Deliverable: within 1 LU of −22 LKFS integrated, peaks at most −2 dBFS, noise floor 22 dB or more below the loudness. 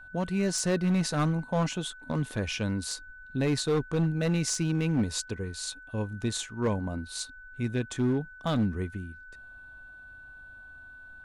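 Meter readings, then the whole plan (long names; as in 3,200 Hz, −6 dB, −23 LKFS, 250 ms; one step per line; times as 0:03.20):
share of clipped samples 1.5%; peaks flattened at −21.0 dBFS; interfering tone 1,500 Hz; level of the tone −46 dBFS; integrated loudness −30.0 LKFS; sample peak −21.0 dBFS; target loudness −22.0 LKFS
→ clipped peaks rebuilt −21 dBFS
notch filter 1,500 Hz, Q 30
level +8 dB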